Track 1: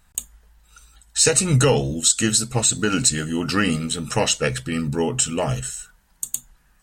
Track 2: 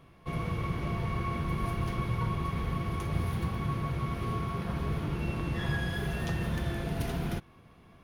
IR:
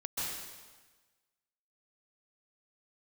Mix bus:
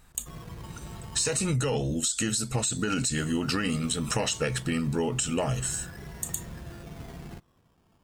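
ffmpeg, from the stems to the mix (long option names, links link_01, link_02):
-filter_complex "[0:a]alimiter=limit=-12.5dB:level=0:latency=1:release=32,volume=1dB[link_01];[1:a]acrusher=samples=17:mix=1:aa=0.000001:lfo=1:lforange=10.2:lforate=0.28,volume=-9.5dB,asplit=3[link_02][link_03][link_04];[link_02]atrim=end=1.46,asetpts=PTS-STARTPTS,afade=type=out:start_time=1.456:duration=0.004:curve=hsin[link_05];[link_03]atrim=start=1.46:end=3.17,asetpts=PTS-STARTPTS,volume=0[link_06];[link_04]atrim=start=3.17,asetpts=PTS-STARTPTS,afade=type=in:duration=0.004:curve=hsin[link_07];[link_05][link_06][link_07]concat=n=3:v=0:a=1[link_08];[link_01][link_08]amix=inputs=2:normalize=0,acompressor=threshold=-25dB:ratio=4"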